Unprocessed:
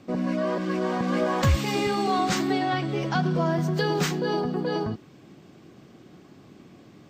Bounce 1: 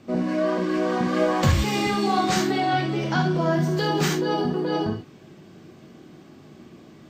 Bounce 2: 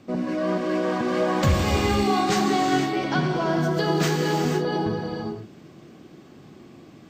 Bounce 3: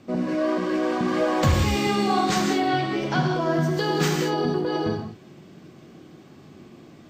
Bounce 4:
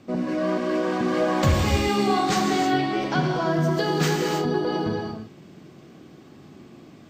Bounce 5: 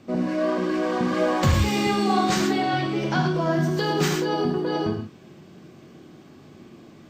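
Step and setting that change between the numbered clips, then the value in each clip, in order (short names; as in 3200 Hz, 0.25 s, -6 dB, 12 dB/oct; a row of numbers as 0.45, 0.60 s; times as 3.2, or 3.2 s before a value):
non-linear reverb, gate: 0.1, 0.53, 0.22, 0.35, 0.15 s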